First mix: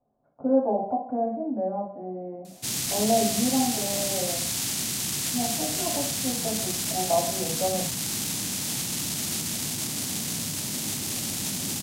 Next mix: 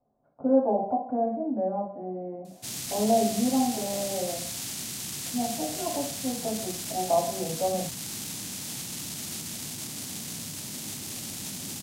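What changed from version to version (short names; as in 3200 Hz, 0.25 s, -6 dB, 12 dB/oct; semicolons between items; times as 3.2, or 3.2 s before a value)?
background -6.5 dB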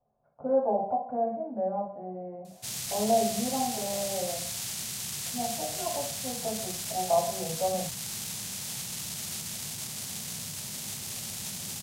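master: add bell 290 Hz -14.5 dB 0.56 oct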